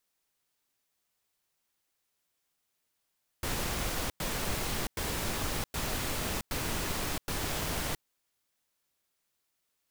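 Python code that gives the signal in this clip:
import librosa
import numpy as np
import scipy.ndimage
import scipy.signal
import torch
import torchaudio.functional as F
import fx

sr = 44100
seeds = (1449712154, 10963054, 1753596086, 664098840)

y = fx.noise_burst(sr, seeds[0], colour='pink', on_s=0.67, off_s=0.1, bursts=6, level_db=-33.0)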